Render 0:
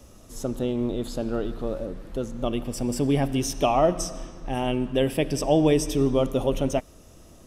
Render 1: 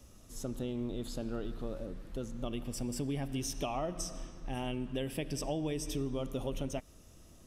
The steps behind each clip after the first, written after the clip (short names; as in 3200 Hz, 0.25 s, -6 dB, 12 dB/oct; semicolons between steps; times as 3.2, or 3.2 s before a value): bell 600 Hz -5 dB 2.3 oct; compressor 5:1, threshold -26 dBFS, peak gain reduction 7.5 dB; gain -6 dB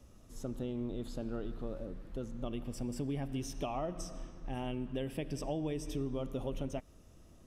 high shelf 2900 Hz -8 dB; gain -1 dB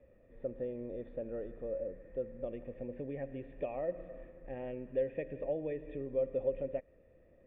vocal tract filter e; gain +11 dB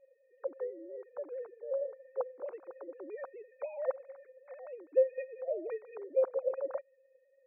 sine-wave speech; gain +2 dB